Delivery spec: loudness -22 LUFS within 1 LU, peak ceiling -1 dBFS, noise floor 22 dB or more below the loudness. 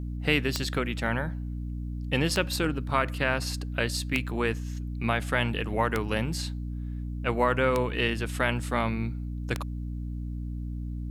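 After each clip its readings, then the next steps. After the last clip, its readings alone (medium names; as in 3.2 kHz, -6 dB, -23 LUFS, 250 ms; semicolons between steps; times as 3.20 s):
clicks found 6; hum 60 Hz; highest harmonic 300 Hz; hum level -31 dBFS; loudness -29.0 LUFS; peak level -9.0 dBFS; loudness target -22.0 LUFS
-> de-click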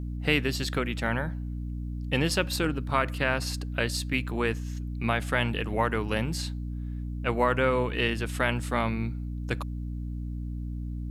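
clicks found 0; hum 60 Hz; highest harmonic 300 Hz; hum level -31 dBFS
-> hum notches 60/120/180/240/300 Hz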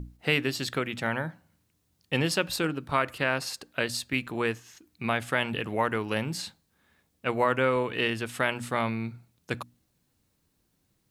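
hum not found; loudness -29.0 LUFS; peak level -9.5 dBFS; loudness target -22.0 LUFS
-> trim +7 dB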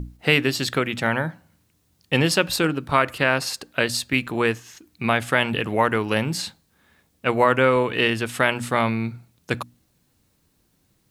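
loudness -22.0 LUFS; peak level -2.5 dBFS; noise floor -66 dBFS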